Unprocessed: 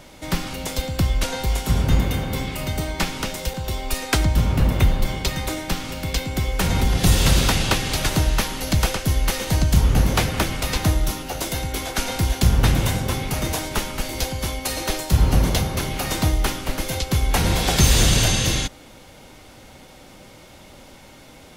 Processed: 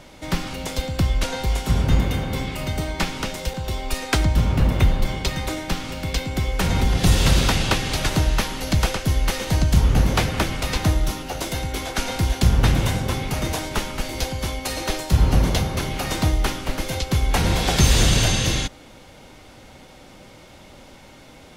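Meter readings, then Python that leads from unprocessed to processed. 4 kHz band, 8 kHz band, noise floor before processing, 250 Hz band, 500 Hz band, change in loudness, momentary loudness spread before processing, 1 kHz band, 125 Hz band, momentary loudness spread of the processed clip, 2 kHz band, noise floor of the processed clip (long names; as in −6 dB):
−1.0 dB, −2.5 dB, −45 dBFS, 0.0 dB, 0.0 dB, −0.5 dB, 9 LU, 0.0 dB, 0.0 dB, 10 LU, −0.5 dB, −46 dBFS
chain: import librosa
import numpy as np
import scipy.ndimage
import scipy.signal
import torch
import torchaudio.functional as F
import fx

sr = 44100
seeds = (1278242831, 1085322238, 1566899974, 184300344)

y = fx.high_shelf(x, sr, hz=9800.0, db=-8.5)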